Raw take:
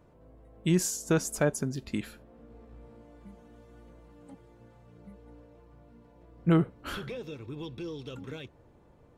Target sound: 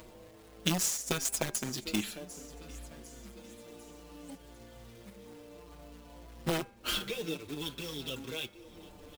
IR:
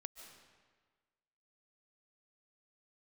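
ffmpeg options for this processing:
-filter_complex "[0:a]highshelf=f=2300:t=q:w=1.5:g=7,aeval=exprs='0.251*sin(PI/2*1.58*val(0)/0.251)':c=same,equalizer=f=120:w=1.4:g=-8.5,acrusher=bits=2:mode=log:mix=0:aa=0.000001,acompressor=mode=upward:threshold=0.0158:ratio=2.5,asplit=2[s0][s1];[s1]aecho=0:1:749|1498|2247|2996:0.1|0.049|0.024|0.0118[s2];[s0][s2]amix=inputs=2:normalize=0,aeval=exprs='0.335*(cos(1*acos(clip(val(0)/0.335,-1,1)))-cos(1*PI/2))+0.0668*(cos(3*acos(clip(val(0)/0.335,-1,1)))-cos(3*PI/2))':c=same,acompressor=threshold=0.0501:ratio=12,bandreject=f=200.2:t=h:w=4,bandreject=f=400.4:t=h:w=4,bandreject=f=600.6:t=h:w=4,bandreject=f=800.8:t=h:w=4,bandreject=f=1001:t=h:w=4,bandreject=f=1201.2:t=h:w=4,bandreject=f=1401.4:t=h:w=4,bandreject=f=1601.6:t=h:w=4,bandreject=f=1801.8:t=h:w=4,bandreject=f=2002:t=h:w=4,bandreject=f=2202.2:t=h:w=4,bandreject=f=2402.4:t=h:w=4,bandreject=f=2602.6:t=h:w=4,asplit=2[s3][s4];[s4]adelay=5.9,afreqshift=-0.59[s5];[s3][s5]amix=inputs=2:normalize=1,volume=1.5"

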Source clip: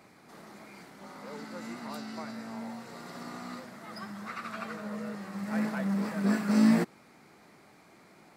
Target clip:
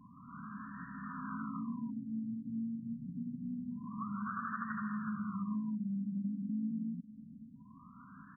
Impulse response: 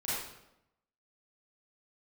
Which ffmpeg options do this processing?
-filter_complex "[0:a]afftfilt=real='re*(1-between(b*sr/4096,280,960))':imag='im*(1-between(b*sr/4096,280,960))':win_size=4096:overlap=0.75,asplit=2[s0][s1];[s1]aecho=0:1:163:0.631[s2];[s0][s2]amix=inputs=2:normalize=0,acompressor=threshold=0.01:ratio=12,asplit=2[s3][s4];[s4]aecho=0:1:545|1090|1635:0.133|0.0453|0.0154[s5];[s3][s5]amix=inputs=2:normalize=0,afftfilt=real='re*lt(b*sr/1024,530*pow(1900/530,0.5+0.5*sin(2*PI*0.26*pts/sr)))':imag='im*lt(b*sr/1024,530*pow(1900/530,0.5+0.5*sin(2*PI*0.26*pts/sr)))':win_size=1024:overlap=0.75,volume=1.88"

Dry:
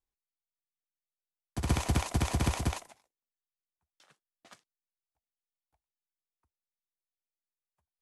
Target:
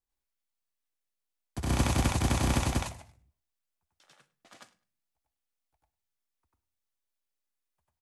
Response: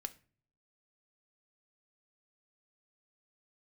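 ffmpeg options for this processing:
-filter_complex "[0:a]aecho=1:1:103|206:0.0794|0.0167,asplit=2[s0][s1];[1:a]atrim=start_sample=2205,adelay=95[s2];[s1][s2]afir=irnorm=-1:irlink=0,volume=2[s3];[s0][s3]amix=inputs=2:normalize=0,volume=0.841"

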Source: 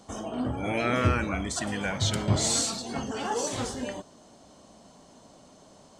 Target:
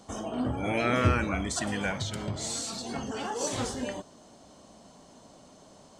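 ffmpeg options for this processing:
-filter_complex "[0:a]asettb=1/sr,asplit=3[s0][s1][s2];[s0]atrim=end=1.914[s3];[s1]atrim=start=1.91:end=3.41,asetpts=PTS-STARTPTS,afade=t=in:d=0.004:c=qsin,afade=t=out:st=1.496:d=0.004:c=qsin,acompressor=threshold=0.0316:ratio=12[s4];[s2]atrim=start=3.406[s5];[s3][s4]acrossfade=d=0.004:c1=hsin:c2=qsin[s6];[s6][s5]acrossfade=d=0.004:c1=qsin:c2=hsin"

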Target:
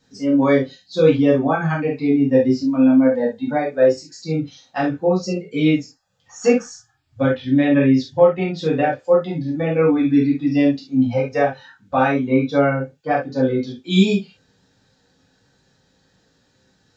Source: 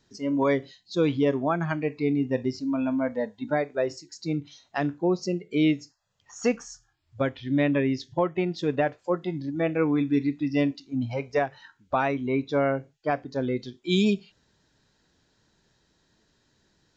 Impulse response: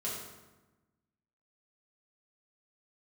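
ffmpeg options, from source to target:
-filter_complex "[1:a]atrim=start_sample=2205,afade=t=out:st=0.14:d=0.01,atrim=end_sample=6615,asetrate=52920,aresample=44100[s0];[0:a][s0]afir=irnorm=-1:irlink=0,volume=2"

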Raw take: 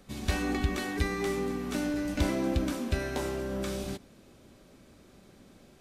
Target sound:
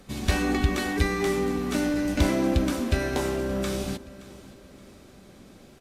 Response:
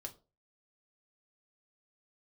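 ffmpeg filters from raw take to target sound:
-filter_complex "[0:a]asplit=2[s0][s1];[s1]aecho=0:1:573|1146|1719:0.112|0.0482|0.0207[s2];[s0][s2]amix=inputs=2:normalize=0,volume=1.88" -ar 48000 -c:a libopus -b:a 64k

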